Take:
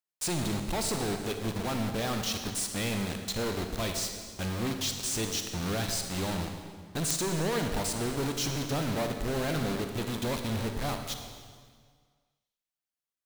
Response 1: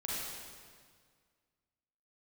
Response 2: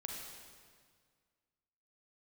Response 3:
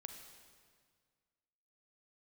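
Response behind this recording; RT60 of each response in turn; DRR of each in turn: 3; 1.8, 1.8, 1.8 seconds; −6.5, −0.5, 5.0 decibels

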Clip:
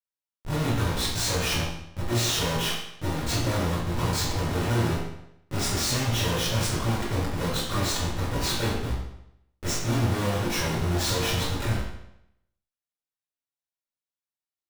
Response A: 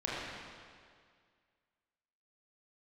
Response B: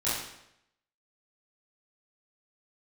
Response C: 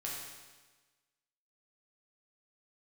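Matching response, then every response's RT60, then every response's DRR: B; 2.0, 0.80, 1.3 seconds; −7.5, −12.0, −5.0 decibels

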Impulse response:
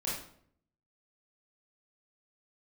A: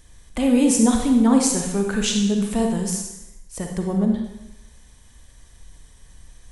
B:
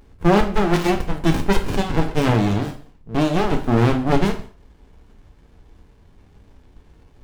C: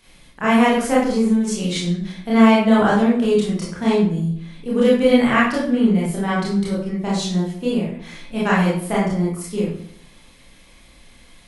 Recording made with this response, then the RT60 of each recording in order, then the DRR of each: C; 0.90, 0.45, 0.60 seconds; 2.0, 4.0, −7.0 decibels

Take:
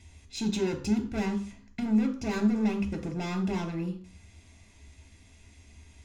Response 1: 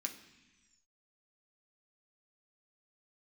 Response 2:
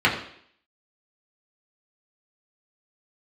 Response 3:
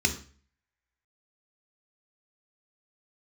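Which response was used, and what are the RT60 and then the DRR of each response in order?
3; non-exponential decay, 0.60 s, 0.40 s; 3.0, −5.0, 5.0 decibels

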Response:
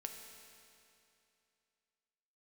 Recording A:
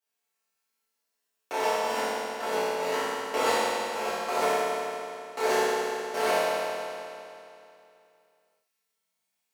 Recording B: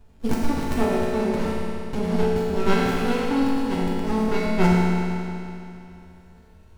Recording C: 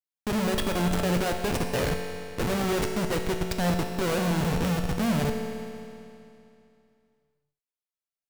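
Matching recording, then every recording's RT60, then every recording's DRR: C; 2.7, 2.7, 2.7 seconds; −14.5, −6.5, 3.0 decibels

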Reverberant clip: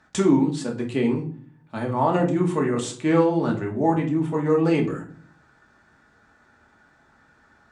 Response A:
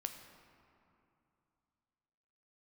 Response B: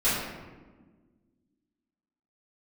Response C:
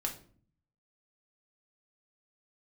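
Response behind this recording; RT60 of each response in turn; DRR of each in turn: C; 2.8, 1.4, 0.45 seconds; 5.5, −13.5, 0.0 decibels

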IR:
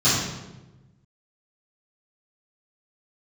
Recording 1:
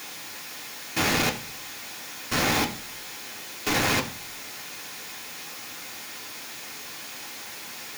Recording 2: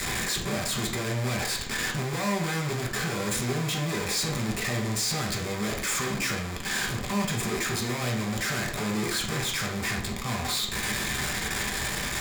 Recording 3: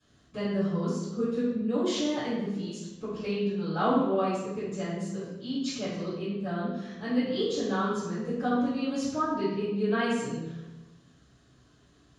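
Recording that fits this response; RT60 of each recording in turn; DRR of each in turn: 3; 0.40, 0.55, 1.1 seconds; 0.0, −1.5, −15.5 decibels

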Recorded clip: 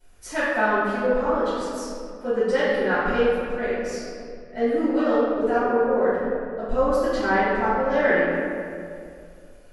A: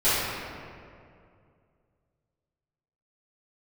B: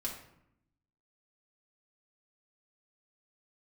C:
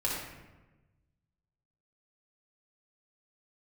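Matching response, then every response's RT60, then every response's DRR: A; 2.4, 0.75, 1.2 seconds; −17.0, −2.5, −6.0 decibels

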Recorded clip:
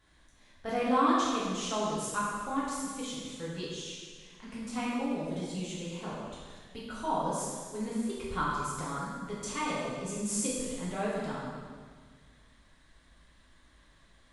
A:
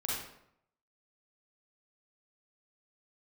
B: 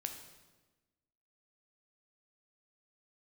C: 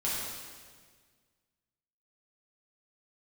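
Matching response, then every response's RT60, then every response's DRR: C; 0.75, 1.2, 1.6 seconds; −5.5, 4.5, −8.0 decibels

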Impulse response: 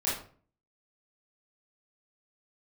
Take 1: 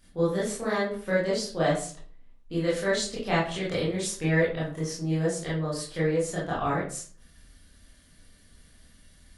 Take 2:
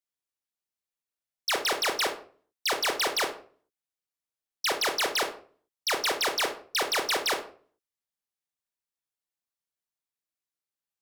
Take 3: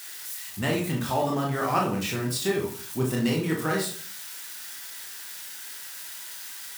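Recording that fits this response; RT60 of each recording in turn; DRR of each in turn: 1; 0.45, 0.45, 0.45 seconds; −9.0, 3.5, −2.0 decibels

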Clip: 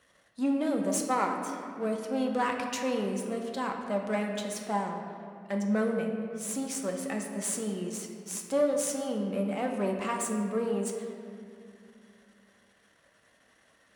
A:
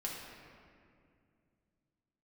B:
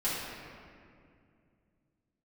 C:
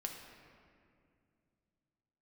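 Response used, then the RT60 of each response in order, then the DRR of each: C; 2.3, 2.3, 2.4 seconds; −4.0, −11.0, 1.5 decibels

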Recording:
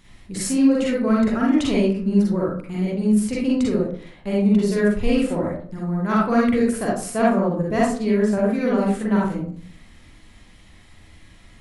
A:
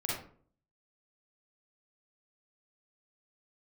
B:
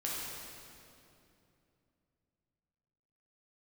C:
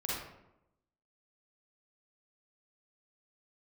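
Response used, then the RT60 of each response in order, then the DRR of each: A; 0.50, 2.8, 0.85 seconds; −5.5, −6.0, −6.5 decibels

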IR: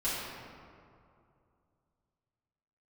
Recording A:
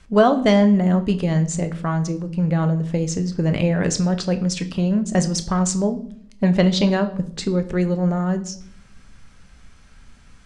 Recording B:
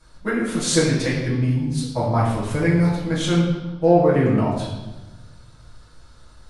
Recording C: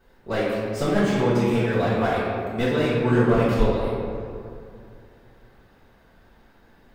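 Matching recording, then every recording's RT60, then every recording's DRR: C; 0.60, 1.1, 2.5 seconds; 8.0, −8.0, −12.5 decibels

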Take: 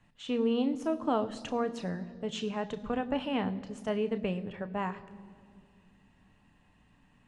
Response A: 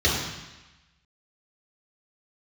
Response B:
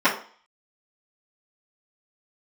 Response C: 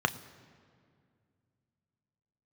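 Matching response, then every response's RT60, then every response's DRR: C; 1.1, 0.45, 2.2 seconds; −8.5, −14.5, 9.0 decibels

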